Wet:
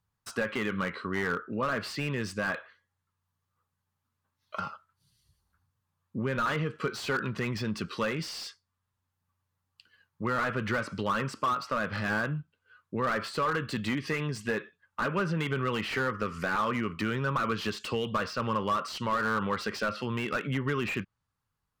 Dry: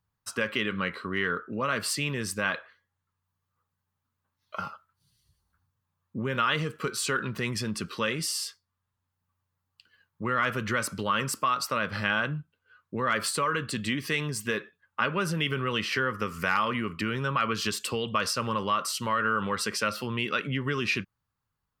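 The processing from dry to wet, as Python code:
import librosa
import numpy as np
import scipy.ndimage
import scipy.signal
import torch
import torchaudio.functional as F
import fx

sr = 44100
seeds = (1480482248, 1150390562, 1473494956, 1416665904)

y = fx.env_lowpass_down(x, sr, base_hz=2600.0, full_db=-24.0)
y = fx.slew_limit(y, sr, full_power_hz=68.0)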